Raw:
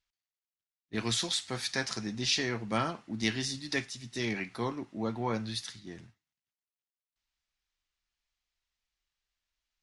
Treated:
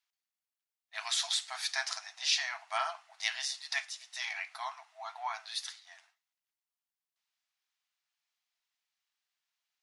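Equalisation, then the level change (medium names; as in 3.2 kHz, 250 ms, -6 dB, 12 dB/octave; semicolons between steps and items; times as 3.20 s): brick-wall FIR high-pass 630 Hz; 0.0 dB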